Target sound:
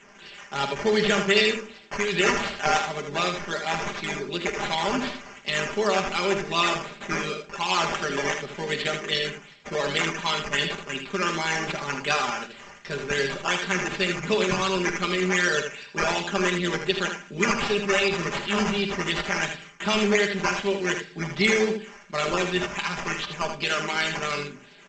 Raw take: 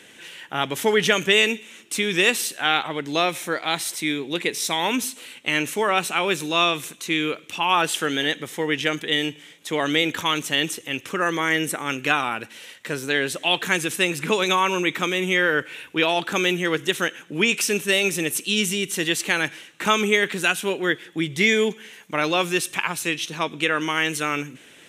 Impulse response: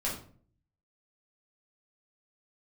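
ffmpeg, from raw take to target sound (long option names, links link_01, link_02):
-filter_complex "[0:a]flanger=delay=4.5:depth=3.2:regen=-78:speed=0.19:shape=sinusoidal,acrossover=split=400[link_01][link_02];[link_02]acrusher=samples=9:mix=1:aa=0.000001:lfo=1:lforange=5.4:lforate=2.7[link_03];[link_01][link_03]amix=inputs=2:normalize=0,aecho=1:1:49|79:0.188|0.447,asplit=2[link_04][link_05];[1:a]atrim=start_sample=2205[link_06];[link_05][link_06]afir=irnorm=-1:irlink=0,volume=-17.5dB[link_07];[link_04][link_07]amix=inputs=2:normalize=0,tremolo=f=100:d=0.462,aecho=1:1:5:0.86" -ar 16000 -c:a g722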